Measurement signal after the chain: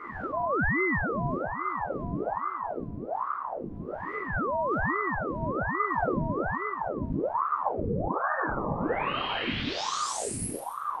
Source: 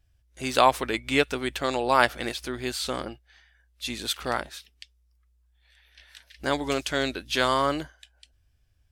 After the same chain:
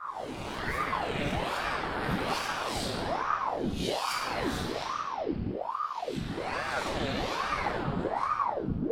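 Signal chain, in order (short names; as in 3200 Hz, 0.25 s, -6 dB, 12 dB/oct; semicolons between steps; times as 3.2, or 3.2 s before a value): spectral swells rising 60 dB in 0.69 s; wind noise 97 Hz -29 dBFS; reverse; compressor 12:1, threshold -32 dBFS; reverse; shoebox room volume 180 m³, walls hard, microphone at 1.1 m; ring modulator with a swept carrier 680 Hz, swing 80%, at 1.2 Hz; gain -2 dB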